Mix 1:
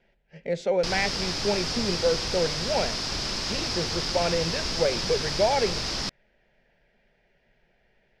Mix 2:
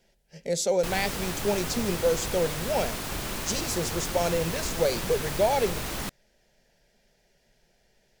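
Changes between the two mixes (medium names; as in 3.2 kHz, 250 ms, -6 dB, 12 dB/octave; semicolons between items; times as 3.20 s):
speech: remove resonant low-pass 2.3 kHz, resonance Q 1.5; background: remove resonant low-pass 5.1 kHz, resonance Q 5.8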